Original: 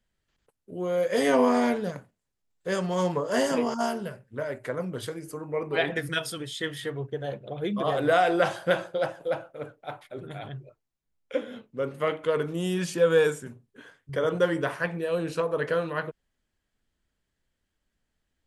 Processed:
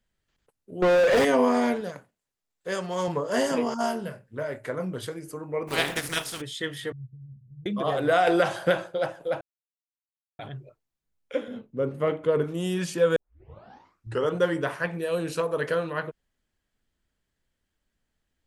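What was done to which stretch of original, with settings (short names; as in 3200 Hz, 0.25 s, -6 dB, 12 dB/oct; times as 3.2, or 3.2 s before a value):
0.82–1.25 overdrive pedal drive 36 dB, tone 1500 Hz, clips at -12.5 dBFS
1.81–3.08 low shelf 240 Hz -9.5 dB
3.81–4.94 doubler 27 ms -9.5 dB
5.67–6.4 spectral contrast lowered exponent 0.45
6.92–7.66 inverse Chebyshev low-pass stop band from 780 Hz, stop band 80 dB
8.27–8.78 three-band squash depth 100%
9.41–10.39 mute
11.48–12.44 tilt shelf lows +6 dB, about 770 Hz
13.16 tape start 1.15 s
14.93–15.75 high shelf 4900 Hz +8 dB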